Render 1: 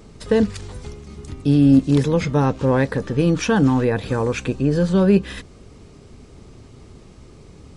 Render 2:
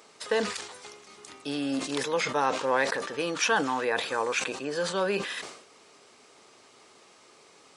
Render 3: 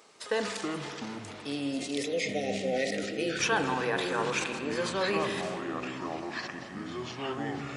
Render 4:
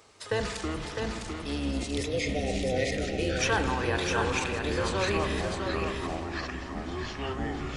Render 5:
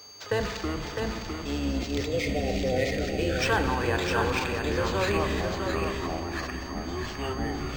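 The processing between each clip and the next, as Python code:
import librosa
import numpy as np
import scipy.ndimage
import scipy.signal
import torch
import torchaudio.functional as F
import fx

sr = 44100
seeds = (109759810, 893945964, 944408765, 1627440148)

y1 = scipy.signal.sosfilt(scipy.signal.butter(2, 740.0, 'highpass', fs=sr, output='sos'), x)
y1 = fx.sustainer(y1, sr, db_per_s=79.0)
y2 = fx.spec_erase(y1, sr, start_s=1.1, length_s=2.28, low_hz=780.0, high_hz=1800.0)
y2 = fx.rev_spring(y2, sr, rt60_s=3.3, pass_ms=(35, 60), chirp_ms=25, drr_db=7.0)
y2 = fx.echo_pitch(y2, sr, ms=193, semitones=-6, count=2, db_per_echo=-6.0)
y2 = y2 * librosa.db_to_amplitude(-3.0)
y3 = fx.octave_divider(y2, sr, octaves=2, level_db=1.0)
y3 = y3 + 10.0 ** (-5.0 / 20.0) * np.pad(y3, (int(656 * sr / 1000.0), 0))[:len(y3)]
y4 = y3 + 10.0 ** (-44.0 / 20.0) * np.sin(2.0 * np.pi * 6400.0 * np.arange(len(y3)) / sr)
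y4 = np.interp(np.arange(len(y4)), np.arange(len(y4))[::4], y4[::4])
y4 = y4 * librosa.db_to_amplitude(2.0)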